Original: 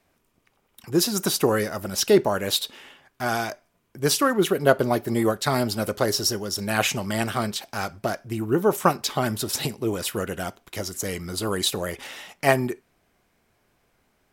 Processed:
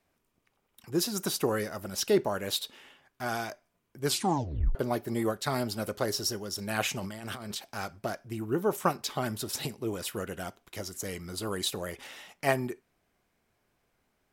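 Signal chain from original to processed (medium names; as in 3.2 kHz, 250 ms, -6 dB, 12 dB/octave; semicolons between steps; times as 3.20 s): 4.05 s: tape stop 0.70 s; 7.00–7.55 s: compressor with a negative ratio -32 dBFS, ratio -1; trim -7.5 dB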